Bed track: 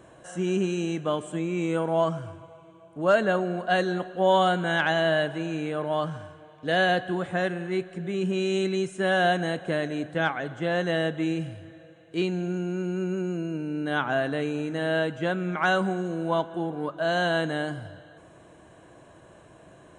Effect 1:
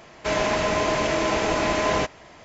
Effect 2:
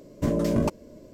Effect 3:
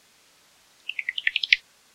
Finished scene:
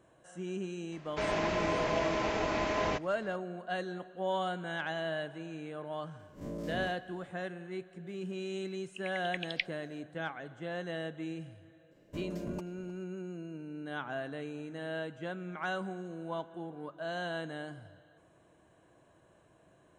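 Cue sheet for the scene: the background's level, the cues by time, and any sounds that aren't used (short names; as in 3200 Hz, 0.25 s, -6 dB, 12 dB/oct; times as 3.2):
bed track -12.5 dB
0.92 add 1 -8.5 dB + air absorption 86 m
6.19 add 2 -14 dB + time blur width 99 ms
8.07 add 3 -15 dB + bell 8500 Hz -12 dB 0.86 oct
11.91 add 2 -17.5 dB + outdoor echo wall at 53 m, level -17 dB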